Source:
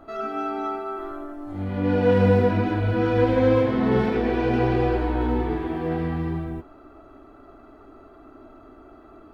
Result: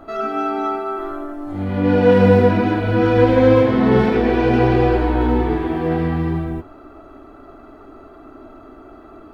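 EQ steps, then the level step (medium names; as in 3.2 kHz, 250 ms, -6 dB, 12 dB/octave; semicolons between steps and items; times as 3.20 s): hum notches 50/100 Hz; +6.5 dB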